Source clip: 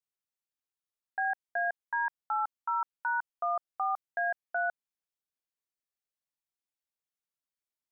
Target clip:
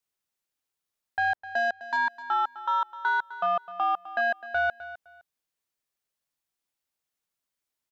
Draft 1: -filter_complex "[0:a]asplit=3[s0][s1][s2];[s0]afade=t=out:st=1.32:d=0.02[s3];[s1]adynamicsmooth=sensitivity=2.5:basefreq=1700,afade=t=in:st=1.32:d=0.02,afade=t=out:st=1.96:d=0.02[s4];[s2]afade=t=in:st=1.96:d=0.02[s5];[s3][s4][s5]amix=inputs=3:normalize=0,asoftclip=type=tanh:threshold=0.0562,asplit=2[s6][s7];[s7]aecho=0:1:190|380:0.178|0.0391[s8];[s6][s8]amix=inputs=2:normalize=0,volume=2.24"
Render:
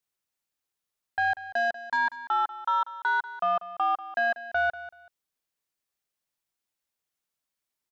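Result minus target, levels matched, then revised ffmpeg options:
echo 66 ms early
-filter_complex "[0:a]asplit=3[s0][s1][s2];[s0]afade=t=out:st=1.32:d=0.02[s3];[s1]adynamicsmooth=sensitivity=2.5:basefreq=1700,afade=t=in:st=1.32:d=0.02,afade=t=out:st=1.96:d=0.02[s4];[s2]afade=t=in:st=1.96:d=0.02[s5];[s3][s4][s5]amix=inputs=3:normalize=0,asoftclip=type=tanh:threshold=0.0562,asplit=2[s6][s7];[s7]aecho=0:1:256|512:0.178|0.0391[s8];[s6][s8]amix=inputs=2:normalize=0,volume=2.24"

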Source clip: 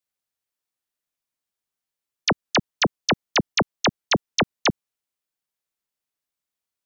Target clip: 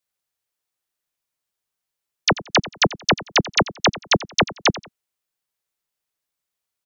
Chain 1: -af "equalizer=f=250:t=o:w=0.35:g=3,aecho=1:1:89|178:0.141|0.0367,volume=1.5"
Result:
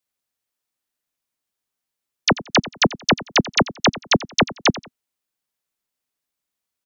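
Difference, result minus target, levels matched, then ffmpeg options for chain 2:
250 Hz band +3.5 dB
-af "equalizer=f=250:t=o:w=0.35:g=-7,aecho=1:1:89|178:0.141|0.0367,volume=1.5"

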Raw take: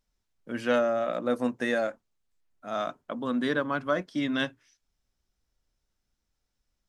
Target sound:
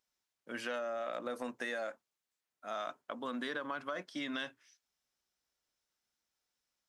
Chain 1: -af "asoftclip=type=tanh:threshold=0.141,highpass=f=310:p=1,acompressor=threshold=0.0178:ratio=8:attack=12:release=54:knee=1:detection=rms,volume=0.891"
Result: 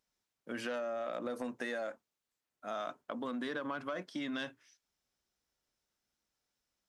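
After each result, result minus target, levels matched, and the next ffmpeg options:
saturation: distortion +13 dB; 250 Hz band +2.5 dB
-af "asoftclip=type=tanh:threshold=0.335,highpass=f=310:p=1,acompressor=threshold=0.0178:ratio=8:attack=12:release=54:knee=1:detection=rms,volume=0.891"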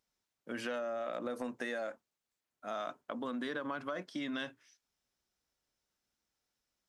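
250 Hz band +2.5 dB
-af "asoftclip=type=tanh:threshold=0.335,highpass=f=750:p=1,acompressor=threshold=0.0178:ratio=8:attack=12:release=54:knee=1:detection=rms,volume=0.891"

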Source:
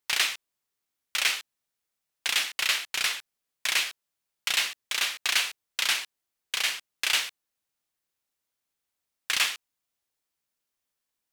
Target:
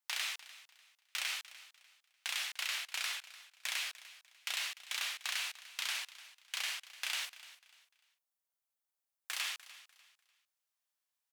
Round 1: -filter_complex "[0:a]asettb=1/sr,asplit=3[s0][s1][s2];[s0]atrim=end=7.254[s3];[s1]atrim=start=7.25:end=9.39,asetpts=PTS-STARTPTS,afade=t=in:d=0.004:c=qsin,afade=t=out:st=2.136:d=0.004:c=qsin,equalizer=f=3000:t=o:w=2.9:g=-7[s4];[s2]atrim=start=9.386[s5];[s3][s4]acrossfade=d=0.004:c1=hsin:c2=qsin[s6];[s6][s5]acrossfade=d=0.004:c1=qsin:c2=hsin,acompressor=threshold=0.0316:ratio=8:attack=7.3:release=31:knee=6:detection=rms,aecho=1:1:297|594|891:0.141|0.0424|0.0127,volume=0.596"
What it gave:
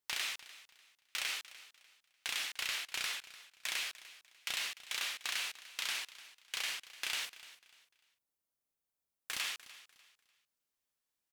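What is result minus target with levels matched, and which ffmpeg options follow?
500 Hz band +4.0 dB
-filter_complex "[0:a]asettb=1/sr,asplit=3[s0][s1][s2];[s0]atrim=end=7.254[s3];[s1]atrim=start=7.25:end=9.39,asetpts=PTS-STARTPTS,afade=t=in:d=0.004:c=qsin,afade=t=out:st=2.136:d=0.004:c=qsin,equalizer=f=3000:t=o:w=2.9:g=-7[s4];[s2]atrim=start=9.386[s5];[s3][s4]acrossfade=d=0.004:c1=hsin:c2=qsin[s6];[s6][s5]acrossfade=d=0.004:c1=qsin:c2=hsin,acompressor=threshold=0.0316:ratio=8:attack=7.3:release=31:knee=6:detection=rms,highpass=f=600:w=0.5412,highpass=f=600:w=1.3066,aecho=1:1:297|594|891:0.141|0.0424|0.0127,volume=0.596"

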